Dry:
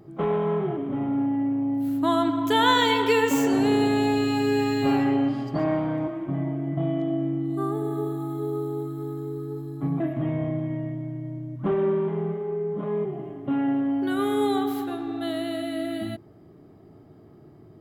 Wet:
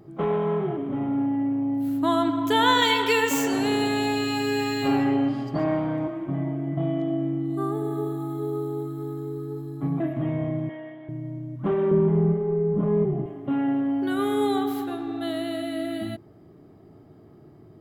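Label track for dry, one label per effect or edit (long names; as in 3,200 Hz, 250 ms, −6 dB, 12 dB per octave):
2.820000	4.880000	tilt shelving filter lows −4 dB
10.690000	11.090000	loudspeaker in its box 480–3,800 Hz, peaks and dips at 760 Hz +3 dB, 1,700 Hz +8 dB, 3,200 Hz +9 dB
11.910000	13.260000	RIAA equalisation playback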